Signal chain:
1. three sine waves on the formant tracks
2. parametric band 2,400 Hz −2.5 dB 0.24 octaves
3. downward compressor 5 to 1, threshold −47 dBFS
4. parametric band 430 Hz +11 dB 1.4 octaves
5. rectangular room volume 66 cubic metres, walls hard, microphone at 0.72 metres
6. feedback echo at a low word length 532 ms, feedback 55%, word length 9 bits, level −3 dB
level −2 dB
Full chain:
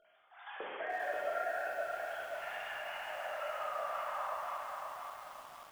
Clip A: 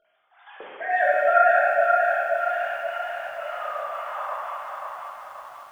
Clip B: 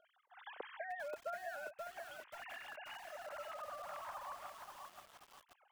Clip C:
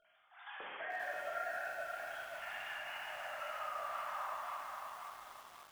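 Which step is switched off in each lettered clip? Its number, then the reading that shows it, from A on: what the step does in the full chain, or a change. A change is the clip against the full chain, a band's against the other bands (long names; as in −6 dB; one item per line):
3, average gain reduction 7.0 dB
5, change in momentary loudness spread +4 LU
4, 500 Hz band −6.0 dB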